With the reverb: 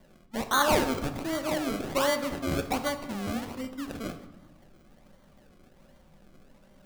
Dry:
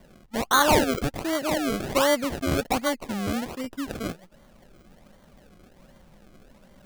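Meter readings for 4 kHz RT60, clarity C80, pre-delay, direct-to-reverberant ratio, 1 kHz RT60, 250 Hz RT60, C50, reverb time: 0.70 s, 12.5 dB, 3 ms, 6.5 dB, 1.3 s, 1.4 s, 10.5 dB, 1.2 s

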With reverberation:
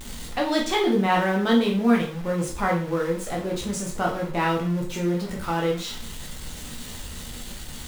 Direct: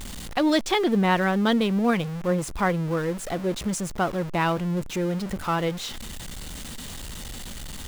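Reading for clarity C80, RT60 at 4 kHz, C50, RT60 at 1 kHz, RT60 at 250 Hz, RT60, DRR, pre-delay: 12.5 dB, 0.40 s, 7.0 dB, 0.40 s, 0.40 s, 0.45 s, -1.5 dB, 5 ms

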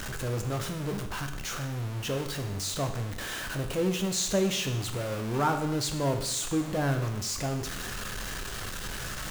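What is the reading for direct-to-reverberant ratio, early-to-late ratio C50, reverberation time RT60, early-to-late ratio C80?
5.0 dB, 9.0 dB, 0.85 s, 11.0 dB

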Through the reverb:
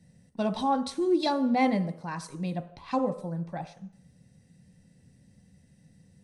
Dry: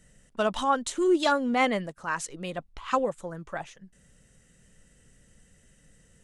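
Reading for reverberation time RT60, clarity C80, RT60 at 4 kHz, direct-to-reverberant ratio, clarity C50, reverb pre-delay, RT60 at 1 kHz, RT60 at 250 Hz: 0.65 s, 16.0 dB, 0.65 s, 7.5 dB, 13.5 dB, 3 ms, 0.65 s, 0.55 s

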